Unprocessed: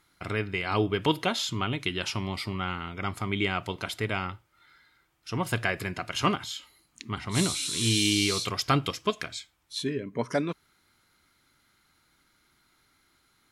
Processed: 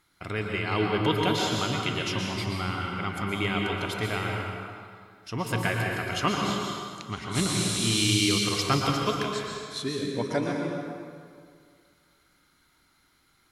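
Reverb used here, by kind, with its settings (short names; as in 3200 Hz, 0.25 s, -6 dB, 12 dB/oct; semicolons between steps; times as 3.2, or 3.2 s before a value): plate-style reverb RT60 2.1 s, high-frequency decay 0.7×, pre-delay 0.105 s, DRR -0.5 dB; gain -1.5 dB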